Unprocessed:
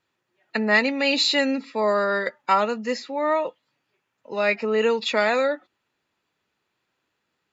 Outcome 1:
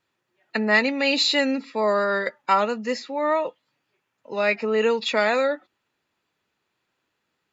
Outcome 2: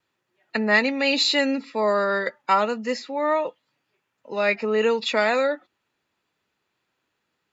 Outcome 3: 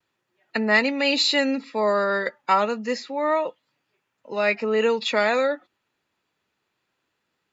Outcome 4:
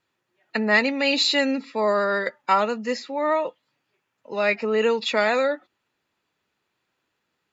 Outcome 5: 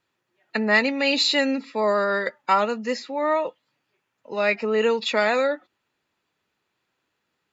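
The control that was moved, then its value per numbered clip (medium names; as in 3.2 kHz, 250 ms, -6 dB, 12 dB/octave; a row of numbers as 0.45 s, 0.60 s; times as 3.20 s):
vibrato, rate: 4.5 Hz, 0.81 Hz, 0.31 Hz, 13 Hz, 8.3 Hz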